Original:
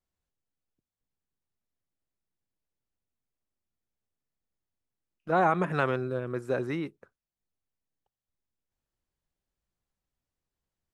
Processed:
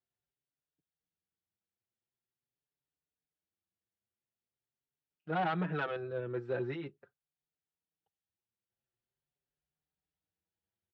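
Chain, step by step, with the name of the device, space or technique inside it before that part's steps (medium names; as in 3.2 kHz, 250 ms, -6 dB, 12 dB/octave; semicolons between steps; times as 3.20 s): barber-pole flanger into a guitar amplifier (endless flanger 5.3 ms +0.44 Hz; saturation -23.5 dBFS, distortion -11 dB; cabinet simulation 96–3800 Hz, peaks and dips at 250 Hz -7 dB, 580 Hz -4 dB, 1.1 kHz -9 dB, 2.2 kHz -4 dB)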